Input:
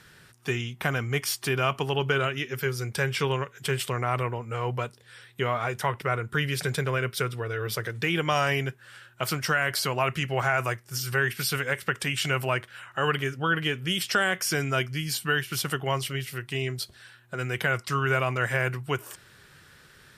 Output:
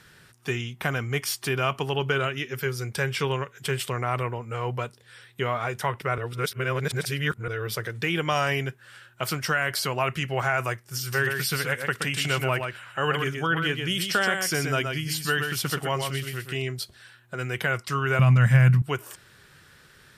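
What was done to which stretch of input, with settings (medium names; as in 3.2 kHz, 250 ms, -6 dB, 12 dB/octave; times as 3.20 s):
6.18–7.48 s: reverse
11.00–16.62 s: delay 124 ms -5.5 dB
18.19–18.82 s: resonant low shelf 260 Hz +11.5 dB, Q 3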